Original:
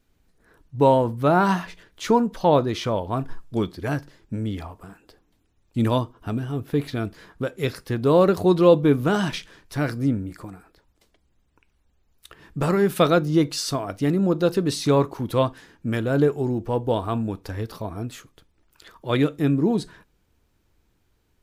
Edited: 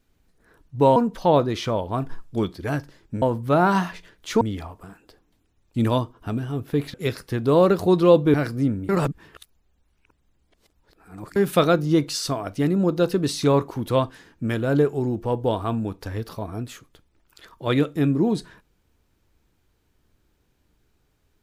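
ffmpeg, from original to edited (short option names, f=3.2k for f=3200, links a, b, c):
-filter_complex "[0:a]asplit=8[a][b][c][d][e][f][g][h];[a]atrim=end=0.962[i];[b]atrim=start=2.148:end=4.412[j];[c]atrim=start=0.958:end=2.152[k];[d]atrim=start=4.408:end=6.942[l];[e]atrim=start=7.518:end=8.922[m];[f]atrim=start=9.768:end=10.322[n];[g]atrim=start=10.318:end=12.792,asetpts=PTS-STARTPTS,areverse[o];[h]atrim=start=12.788[p];[i][j]acrossfade=d=0.004:c1=hsin:c2=hsin[q];[q][k]acrossfade=d=0.004:c1=hsin:c2=hsin[r];[r][l]acrossfade=d=0.004:c1=hsin:c2=hsin[s];[s][m]acrossfade=d=0.004:c1=hsin:c2=hsin[t];[t][n]acrossfade=d=0.004:c1=hsin:c2=hsin[u];[u][o]acrossfade=d=0.004:c1=hsin:c2=hsin[v];[v][p]acrossfade=d=0.004:c1=hsin:c2=hsin"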